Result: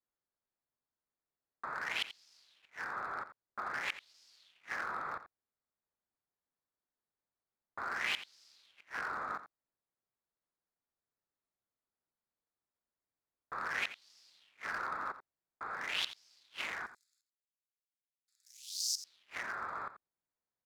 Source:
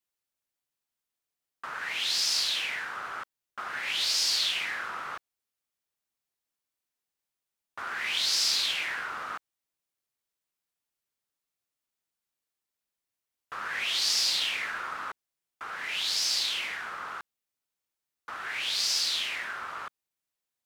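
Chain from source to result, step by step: Wiener smoothing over 15 samples; 16.86–18.98 inverse Chebyshev high-pass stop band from 1000 Hz, stop band 80 dB; flipped gate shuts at -21 dBFS, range -37 dB; echo 86 ms -13.5 dB

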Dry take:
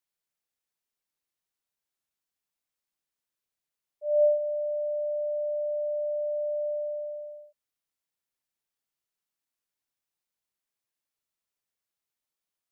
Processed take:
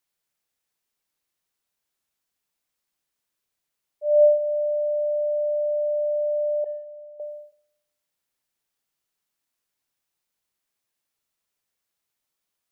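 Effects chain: 6.64–7.2 gate -30 dBFS, range -13 dB; Schroeder reverb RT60 0.99 s, combs from 26 ms, DRR 19.5 dB; gain +6.5 dB

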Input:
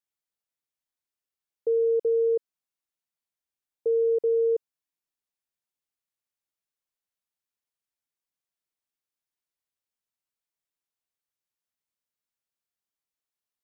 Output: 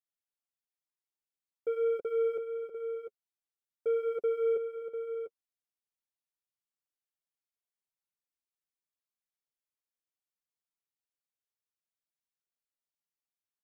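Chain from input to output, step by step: sample leveller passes 1; flange 0.98 Hz, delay 4.9 ms, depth 4.9 ms, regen -19%; on a send: tapped delay 0.579/0.697 s -17.5/-8.5 dB; on the sum: gain -4 dB

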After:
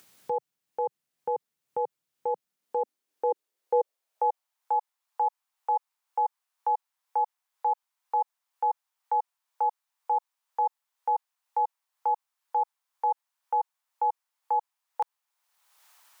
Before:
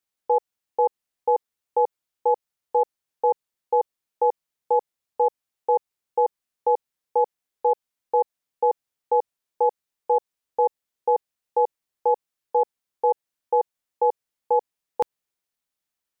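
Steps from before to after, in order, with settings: limiter -21 dBFS, peak gain reduction 9 dB; upward compressor, threshold -40 dBFS; high-pass sweep 140 Hz -> 920 Hz, 2.1–4.65

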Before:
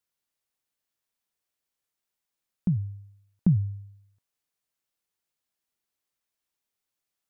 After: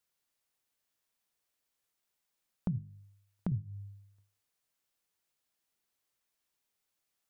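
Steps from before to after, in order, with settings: 2.78–3.52 low shelf 350 Hz -9.5 dB; notches 50/100/150/200/250/300/350/400 Hz; compressor 3:1, threshold -36 dBFS, peak gain reduction 11.5 dB; gain +2 dB

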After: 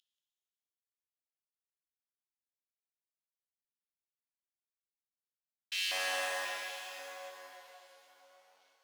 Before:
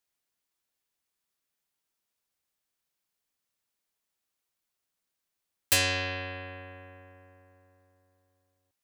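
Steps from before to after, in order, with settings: CVSD 32 kbps; 5.97–6.43 HPF 42 Hz 24 dB/oct; soft clip -39.5 dBFS, distortion -3 dB; LFO high-pass square 0.93 Hz 720–3000 Hz; on a send: tape echo 0.181 s, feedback 67%, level -8 dB, low-pass 2000 Hz; on the sum: shimmer reverb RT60 1.9 s, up +12 st, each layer -8 dB, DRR 0 dB; gain +2.5 dB

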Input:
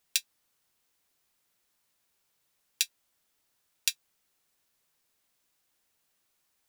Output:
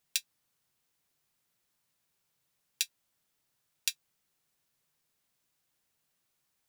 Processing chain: bell 140 Hz +8 dB 0.93 oct; gain -3.5 dB

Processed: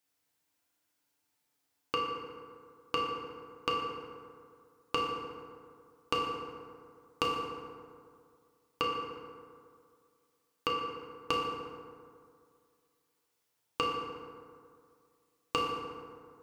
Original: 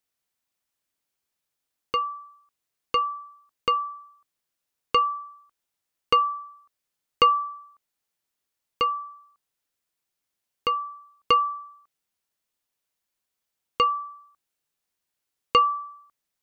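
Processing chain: HPF 72 Hz 12 dB/oct; compressor 12:1, threshold -31 dBFS, peak gain reduction 17.5 dB; FDN reverb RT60 2.2 s, low-frequency decay 1×, high-frequency decay 0.45×, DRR -2.5 dB

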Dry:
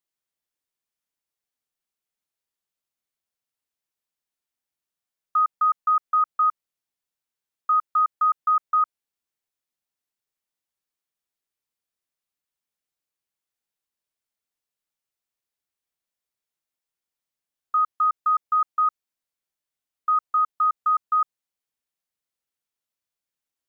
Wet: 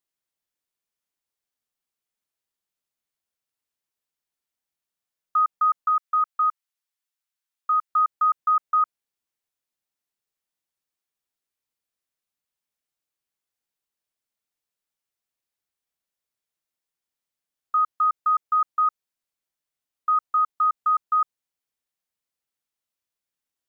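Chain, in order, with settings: 5.88–7.9 HPF 960 Hz 12 dB/oct

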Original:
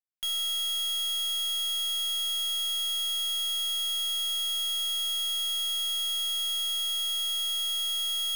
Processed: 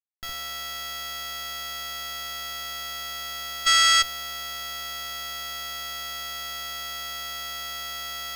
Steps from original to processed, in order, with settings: median filter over 15 samples; spectral gain 3.66–4.02, 1100–9000 Hz +11 dB; added harmonics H 3 -14 dB, 4 -30 dB, 8 -44 dB, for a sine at -13.5 dBFS; in parallel at -6 dB: Schmitt trigger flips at -33 dBFS; on the sum: gain +5 dB

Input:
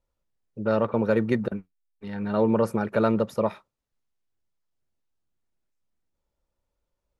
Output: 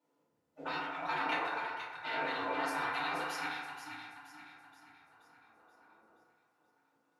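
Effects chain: compressor 6:1, threshold -25 dBFS, peak gain reduction 8.5 dB; on a send: split-band echo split 340 Hz, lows 89 ms, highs 0.478 s, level -7 dB; on the sum: soft clip -16 dBFS, distortion -24 dB; dynamic EQ 3300 Hz, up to +7 dB, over -56 dBFS, Q 1.1; in parallel at -9.5 dB: crossover distortion -50.5 dBFS; on the sum: tilt -2 dB/oct; spectral gate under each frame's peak -25 dB weak; HPF 200 Hz 12 dB/oct; FDN reverb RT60 1.3 s, low-frequency decay 0.75×, high-frequency decay 0.35×, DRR -9 dB

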